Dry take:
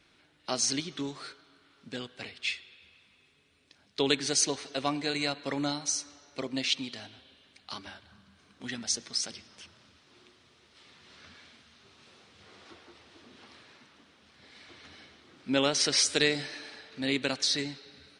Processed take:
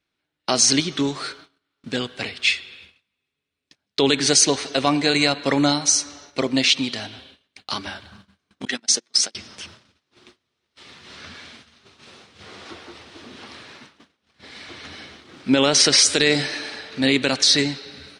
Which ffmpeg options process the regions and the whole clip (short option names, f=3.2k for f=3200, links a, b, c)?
-filter_complex "[0:a]asettb=1/sr,asplit=3[a][b][c];[a]atrim=end=8.654[d];[b]atrim=start=8.65:end=9.35,asetpts=PTS-STARTPTS,afade=t=in:d=0.004:c=qsin,afade=t=out:st=0.696:d=0.004:c=qsin,bandreject=f=60:t=h:w=6,bandreject=f=120:t=h:w=6,bandreject=f=180:t=h:w=6,bandreject=f=240:t=h:w=6,bandreject=f=300:t=h:w=6,bandreject=f=360:t=h:w=6,agate=range=-31dB:threshold=-39dB:ratio=16:release=100:detection=peak,highpass=250[e];[c]atrim=start=9.346[f];[d][e]acrossfade=d=0.004:c1=hsin:c2=qsin[g];[g][f]acrossfade=d=0.004:c1=qsin:c2=hsin,agate=range=-28dB:threshold=-57dB:ratio=16:detection=peak,alimiter=level_in=17dB:limit=-1dB:release=50:level=0:latency=1,volume=-4dB"